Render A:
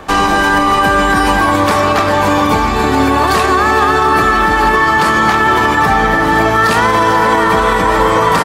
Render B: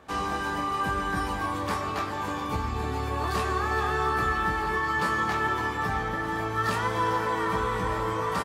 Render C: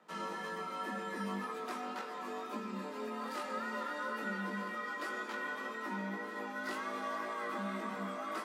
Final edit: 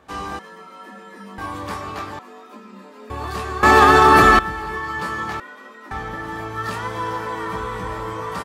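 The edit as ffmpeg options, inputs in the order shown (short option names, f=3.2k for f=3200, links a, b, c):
-filter_complex "[2:a]asplit=3[a][b][c];[1:a]asplit=5[d][e][f][g][h];[d]atrim=end=0.392[i];[a]atrim=start=0.388:end=1.382[j];[e]atrim=start=1.378:end=2.192[k];[b]atrim=start=2.188:end=3.102[l];[f]atrim=start=3.098:end=3.632[m];[0:a]atrim=start=3.628:end=4.392[n];[g]atrim=start=4.388:end=5.402[o];[c]atrim=start=5.398:end=5.912[p];[h]atrim=start=5.908[q];[i][j]acrossfade=d=0.004:c1=hsin:c2=hsin[r];[r][k]acrossfade=d=0.004:c1=hsin:c2=hsin[s];[s][l]acrossfade=d=0.004:c1=hsin:c2=hsin[t];[t][m]acrossfade=d=0.004:c1=hsin:c2=hsin[u];[u][n]acrossfade=d=0.004:c1=hsin:c2=hsin[v];[v][o]acrossfade=d=0.004:c1=hsin:c2=hsin[w];[w][p]acrossfade=d=0.004:c1=hsin:c2=hsin[x];[x][q]acrossfade=d=0.004:c1=hsin:c2=hsin"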